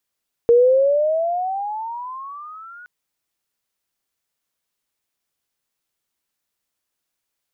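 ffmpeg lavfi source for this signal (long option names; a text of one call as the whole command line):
ffmpeg -f lavfi -i "aevalsrc='pow(10,(-8.5-29*t/2.37)/20)*sin(2*PI*465*2.37/(20*log(2)/12)*(exp(20*log(2)/12*t/2.37)-1))':duration=2.37:sample_rate=44100" out.wav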